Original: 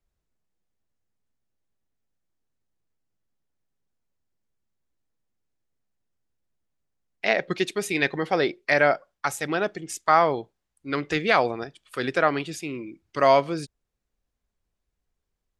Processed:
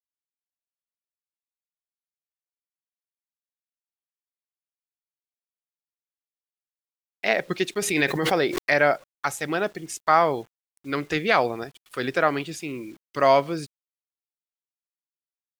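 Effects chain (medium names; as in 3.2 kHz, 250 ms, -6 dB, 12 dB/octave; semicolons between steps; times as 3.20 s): bit crusher 9-bit; 7.82–8.71 s: swell ahead of each attack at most 42 dB/s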